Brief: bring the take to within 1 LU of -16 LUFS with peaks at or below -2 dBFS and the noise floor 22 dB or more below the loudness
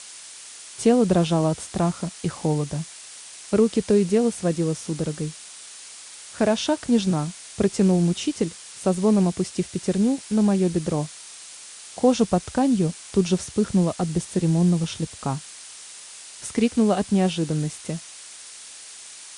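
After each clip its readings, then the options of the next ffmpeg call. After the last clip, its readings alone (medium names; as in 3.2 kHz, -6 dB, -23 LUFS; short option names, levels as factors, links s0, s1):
noise floor -42 dBFS; noise floor target -45 dBFS; loudness -23.0 LUFS; peak level -7.0 dBFS; loudness target -16.0 LUFS
-> -af "afftdn=nr=6:nf=-42"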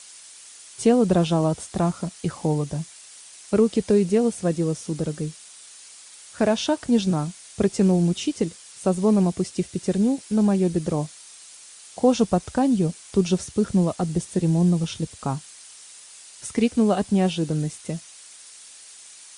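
noise floor -46 dBFS; loudness -23.0 LUFS; peak level -7.0 dBFS; loudness target -16.0 LUFS
-> -af "volume=2.24,alimiter=limit=0.794:level=0:latency=1"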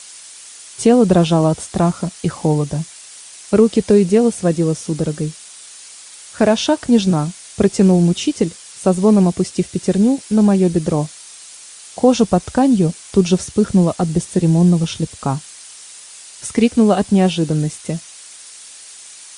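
loudness -16.0 LUFS; peak level -2.0 dBFS; noise floor -39 dBFS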